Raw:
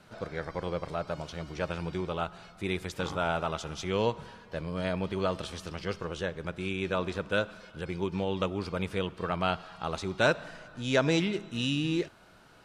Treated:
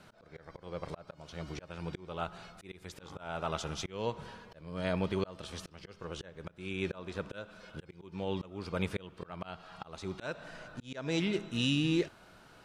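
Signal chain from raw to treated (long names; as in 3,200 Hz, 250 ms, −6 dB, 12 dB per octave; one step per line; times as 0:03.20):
volume swells 423 ms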